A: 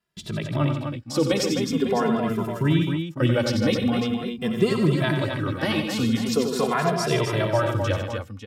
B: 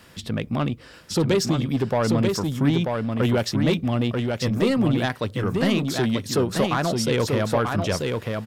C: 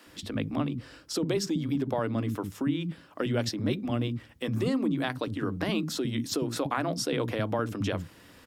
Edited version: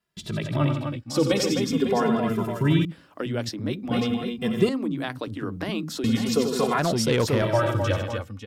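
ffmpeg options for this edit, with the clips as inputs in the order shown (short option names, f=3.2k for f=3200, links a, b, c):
-filter_complex "[2:a]asplit=2[a][b];[0:a]asplit=4[c][d][e][f];[c]atrim=end=2.852[g];[a]atrim=start=2.848:end=3.912[h];[d]atrim=start=3.908:end=4.692[i];[b]atrim=start=4.688:end=6.042[j];[e]atrim=start=6.038:end=6.792[k];[1:a]atrim=start=6.788:end=7.422[l];[f]atrim=start=7.418[m];[g][h]acrossfade=d=0.004:c1=hsin:c2=hsin[n];[n][i]acrossfade=d=0.004:c1=hsin:c2=hsin[o];[o][j]acrossfade=d=0.004:c1=hsin:c2=hsin[p];[p][k]acrossfade=d=0.004:c1=hsin:c2=hsin[q];[q][l]acrossfade=d=0.004:c1=hsin:c2=hsin[r];[r][m]acrossfade=d=0.004:c1=hsin:c2=hsin"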